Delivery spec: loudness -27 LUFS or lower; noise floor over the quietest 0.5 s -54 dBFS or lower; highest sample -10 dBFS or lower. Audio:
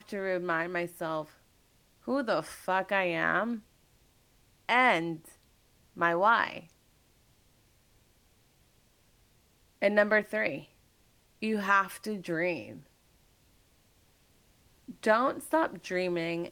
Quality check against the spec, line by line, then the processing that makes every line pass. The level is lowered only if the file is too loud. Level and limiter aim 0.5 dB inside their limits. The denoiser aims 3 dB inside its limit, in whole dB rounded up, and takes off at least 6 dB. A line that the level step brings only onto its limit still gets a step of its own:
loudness -29.5 LUFS: pass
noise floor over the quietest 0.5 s -66 dBFS: pass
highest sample -12.0 dBFS: pass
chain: none needed

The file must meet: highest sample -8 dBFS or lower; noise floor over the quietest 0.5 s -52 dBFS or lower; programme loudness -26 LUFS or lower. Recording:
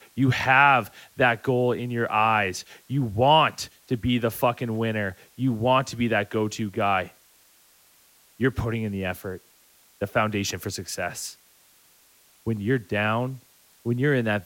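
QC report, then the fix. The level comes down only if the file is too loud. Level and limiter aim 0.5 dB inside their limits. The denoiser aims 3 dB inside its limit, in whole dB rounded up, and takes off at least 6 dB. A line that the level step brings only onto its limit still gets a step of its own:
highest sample -5.0 dBFS: fail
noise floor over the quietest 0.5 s -58 dBFS: pass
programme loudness -24.0 LUFS: fail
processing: trim -2.5 dB; peak limiter -8.5 dBFS

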